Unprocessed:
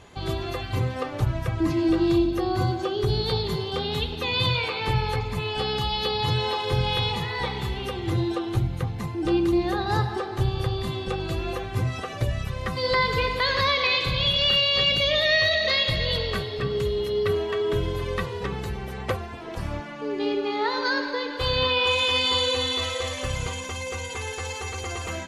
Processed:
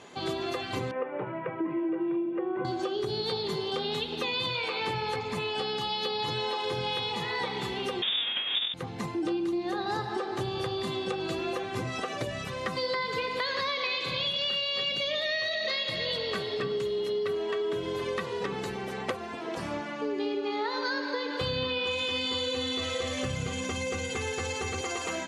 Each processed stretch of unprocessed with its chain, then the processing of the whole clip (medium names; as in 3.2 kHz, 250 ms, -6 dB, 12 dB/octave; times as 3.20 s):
0.91–2.65 s: elliptic band-pass 160–2500 Hz + distance through air 390 m + comb 2.1 ms, depth 52%
8.02–8.74 s: square wave that keeps the level + frequency inversion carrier 3.6 kHz
21.41–24.81 s: tone controls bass +15 dB, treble -2 dB + band-stop 960 Hz, Q 7.4
whole clip: Chebyshev band-pass 240–8600 Hz, order 2; compression, threshold -30 dBFS; trim +2 dB